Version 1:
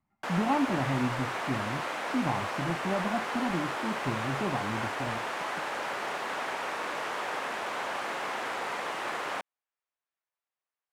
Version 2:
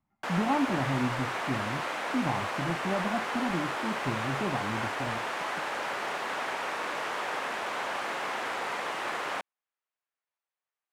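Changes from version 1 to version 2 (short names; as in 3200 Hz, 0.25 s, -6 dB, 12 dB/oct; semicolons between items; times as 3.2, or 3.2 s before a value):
background: add high shelf 2200 Hz +7.5 dB; master: add high shelf 3100 Hz -7.5 dB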